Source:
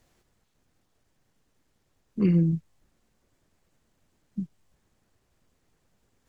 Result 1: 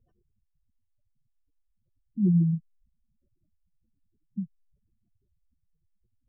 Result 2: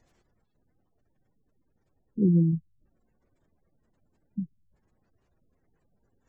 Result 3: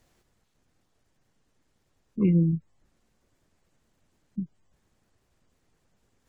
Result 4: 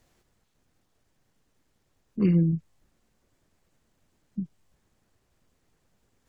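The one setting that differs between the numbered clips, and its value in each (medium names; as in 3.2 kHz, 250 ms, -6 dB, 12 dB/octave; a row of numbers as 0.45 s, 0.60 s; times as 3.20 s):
spectral gate, under each frame's peak: -10 dB, -25 dB, -40 dB, -55 dB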